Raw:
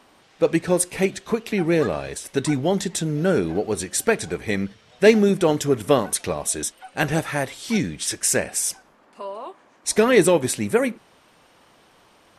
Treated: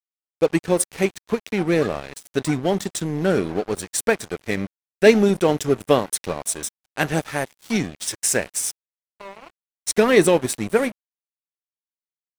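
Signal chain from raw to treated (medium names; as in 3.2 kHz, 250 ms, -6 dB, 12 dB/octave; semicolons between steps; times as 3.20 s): crossover distortion -32 dBFS; trim +1.5 dB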